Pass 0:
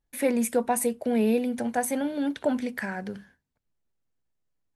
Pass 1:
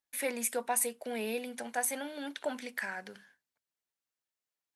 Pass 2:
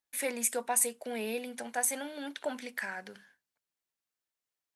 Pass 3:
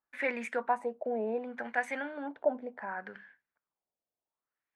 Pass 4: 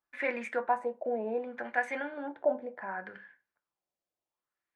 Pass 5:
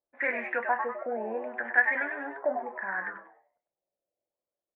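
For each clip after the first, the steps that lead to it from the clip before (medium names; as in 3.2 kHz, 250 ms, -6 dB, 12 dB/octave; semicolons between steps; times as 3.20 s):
high-pass 1.5 kHz 6 dB/octave
dynamic bell 7.4 kHz, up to +6 dB, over -47 dBFS, Q 1.5
LFO low-pass sine 0.68 Hz 630–2100 Hz
treble shelf 9.3 kHz -11.5 dB; on a send at -7.5 dB: reverberation RT60 0.30 s, pre-delay 3 ms
on a send: frequency-shifting echo 98 ms, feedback 36%, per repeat +130 Hz, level -6.5 dB; on the sum: touch-sensitive low-pass 570–1800 Hz up, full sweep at -35 dBFS; trim -2 dB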